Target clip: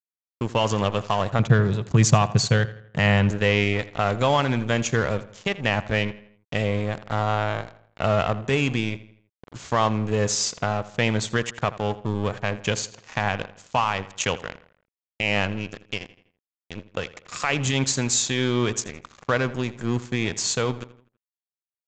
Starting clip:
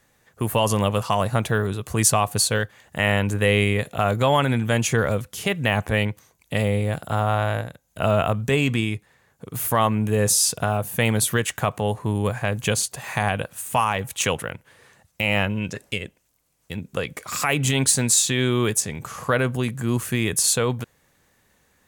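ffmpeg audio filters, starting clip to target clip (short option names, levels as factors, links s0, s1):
-filter_complex "[0:a]asettb=1/sr,asplit=3[s0][s1][s2];[s0]atrim=end=1.394[s3];[s1]atrim=start=1.39:end=3.31,asetpts=PTS-STARTPTS,afade=t=in:d=0.004:c=qsin,afade=t=out:st=1.916:d=0.004:c=qsin,equalizer=f=140:w=1.7:g=13.5[s4];[s2]atrim=start=3.306[s5];[s3][s4]acrossfade=d=0.004:c1=hsin:c2=qsin[s6];[s6][s5]acrossfade=d=0.004:c1=qsin:c2=hsin,aeval=exprs='sgn(val(0))*max(abs(val(0))-0.0282,0)':c=same,asplit=2[s7][s8];[s8]adelay=82,lowpass=f=4300:p=1,volume=0.15,asplit=2[s9][s10];[s10]adelay=82,lowpass=f=4300:p=1,volume=0.46,asplit=2[s11][s12];[s12]adelay=82,lowpass=f=4300:p=1,volume=0.46,asplit=2[s13][s14];[s14]adelay=82,lowpass=f=4300:p=1,volume=0.46[s15];[s9][s11][s13][s15]amix=inputs=4:normalize=0[s16];[s7][s16]amix=inputs=2:normalize=0,aresample=16000,aresample=44100"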